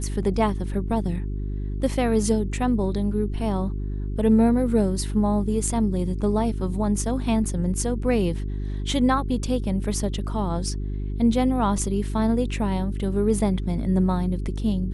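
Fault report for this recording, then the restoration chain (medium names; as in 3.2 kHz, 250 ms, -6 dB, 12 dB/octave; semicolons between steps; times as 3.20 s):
hum 50 Hz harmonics 8 -28 dBFS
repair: de-hum 50 Hz, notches 8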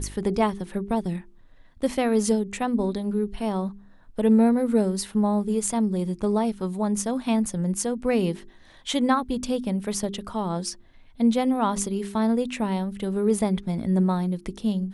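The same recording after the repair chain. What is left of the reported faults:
nothing left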